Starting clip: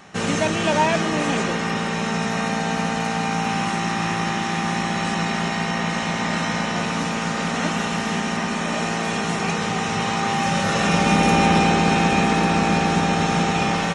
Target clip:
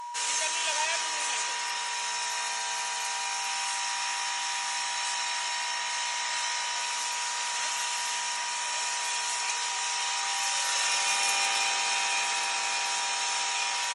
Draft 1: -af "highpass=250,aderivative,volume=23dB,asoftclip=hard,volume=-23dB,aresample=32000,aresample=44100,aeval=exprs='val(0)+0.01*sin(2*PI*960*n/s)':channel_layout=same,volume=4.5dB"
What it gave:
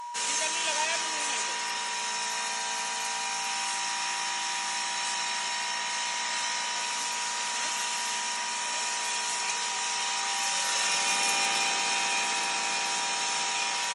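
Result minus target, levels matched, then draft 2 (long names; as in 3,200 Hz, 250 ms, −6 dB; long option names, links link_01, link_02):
250 Hz band +10.0 dB
-af "highpass=560,aderivative,volume=23dB,asoftclip=hard,volume=-23dB,aresample=32000,aresample=44100,aeval=exprs='val(0)+0.01*sin(2*PI*960*n/s)':channel_layout=same,volume=4.5dB"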